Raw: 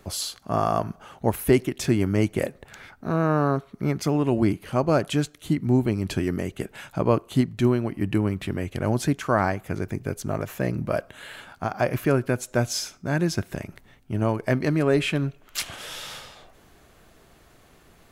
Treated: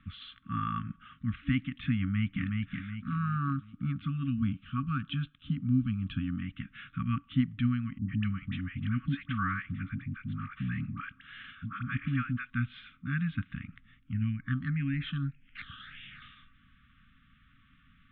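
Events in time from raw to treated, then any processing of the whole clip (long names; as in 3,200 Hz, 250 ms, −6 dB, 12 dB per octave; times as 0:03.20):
0:01.99–0:02.43: delay throw 370 ms, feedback 45%, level −3 dB
0:03.08–0:06.42: parametric band 2,000 Hz −13 dB 0.35 octaves
0:07.98–0:12.50: all-pass dispersion highs, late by 110 ms, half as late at 640 Hz
0:14.13–0:16.22: all-pass phaser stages 6, 1.7 Hz, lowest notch 570–1,200 Hz
whole clip: brick-wall band-stop 280–1,100 Hz; Butterworth low-pass 3,600 Hz 96 dB per octave; level −5.5 dB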